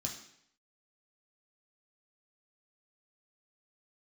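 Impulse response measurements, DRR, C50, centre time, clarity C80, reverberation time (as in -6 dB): -1.5 dB, 7.5 dB, 26 ms, 10.0 dB, 0.70 s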